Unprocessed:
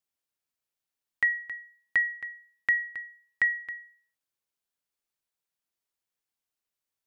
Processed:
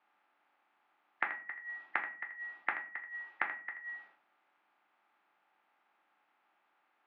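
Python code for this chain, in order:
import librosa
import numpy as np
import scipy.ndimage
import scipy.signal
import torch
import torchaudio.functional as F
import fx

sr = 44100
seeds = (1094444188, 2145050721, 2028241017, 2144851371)

y = fx.spec_clip(x, sr, under_db=17)
y = fx.auto_swell(y, sr, attack_ms=140.0)
y = fx.gate_flip(y, sr, shuts_db=-36.0, range_db=-28)
y = fx.cabinet(y, sr, low_hz=250.0, low_slope=24, high_hz=2500.0, hz=(460.0, 820.0, 1300.0), db=(-9, 10, 6))
y = y + 10.0 ** (-12.0 / 20.0) * np.pad(y, (int(81 * sr / 1000.0), 0))[:len(y)]
y = fx.room_shoebox(y, sr, seeds[0], volume_m3=31.0, walls='mixed', distance_m=0.39)
y = y * librosa.db_to_amplitude(18.0)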